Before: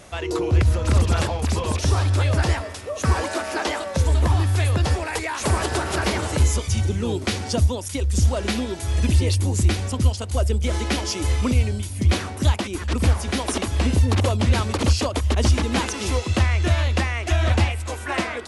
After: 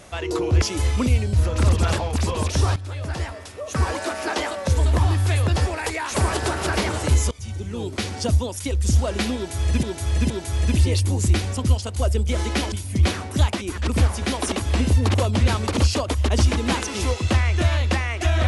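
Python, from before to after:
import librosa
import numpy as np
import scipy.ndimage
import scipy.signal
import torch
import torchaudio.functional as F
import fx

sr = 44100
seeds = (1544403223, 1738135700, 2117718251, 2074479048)

y = fx.edit(x, sr, fx.fade_in_from(start_s=2.05, length_s=1.9, curve='qsin', floor_db=-16.0),
    fx.fade_in_from(start_s=6.6, length_s=1.41, curve='qsin', floor_db=-17.0),
    fx.repeat(start_s=8.65, length_s=0.47, count=3),
    fx.move(start_s=11.07, length_s=0.71, to_s=0.62), tone=tone)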